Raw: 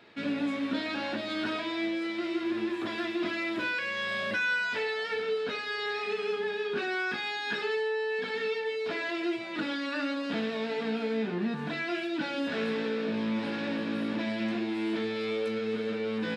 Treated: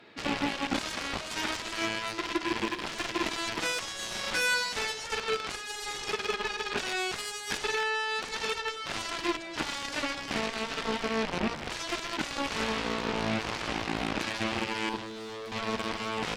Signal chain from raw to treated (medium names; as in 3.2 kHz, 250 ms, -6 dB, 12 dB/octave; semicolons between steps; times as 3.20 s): rattle on loud lows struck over -43 dBFS, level -30 dBFS; 14.89–15.52 s: static phaser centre 530 Hz, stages 6; Chebyshev shaper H 7 -10 dB, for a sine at -19 dBFS